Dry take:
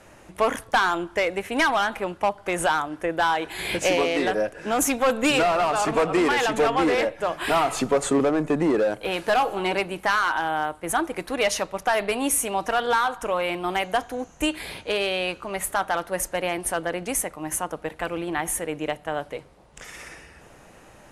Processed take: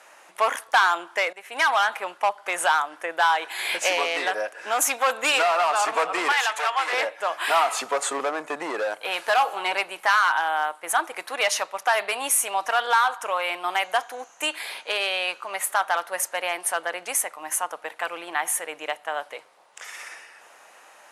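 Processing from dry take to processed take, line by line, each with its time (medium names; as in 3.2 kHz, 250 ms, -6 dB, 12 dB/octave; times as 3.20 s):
1.33–1.74 s: fade in, from -16 dB
6.32–6.93 s: high-pass 830 Hz
whole clip: Chebyshev high-pass 890 Hz, order 2; trim +3 dB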